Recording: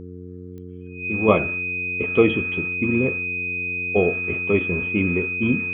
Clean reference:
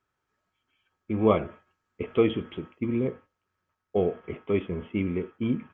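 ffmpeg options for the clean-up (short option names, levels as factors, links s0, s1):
-af "adeclick=t=4,bandreject=f=90.1:t=h:w=4,bandreject=f=180.2:t=h:w=4,bandreject=f=270.3:t=h:w=4,bandreject=f=360.4:t=h:w=4,bandreject=f=450.5:t=h:w=4,bandreject=f=2500:w=30,asetnsamples=n=441:p=0,asendcmd='1.28 volume volume -5.5dB',volume=1"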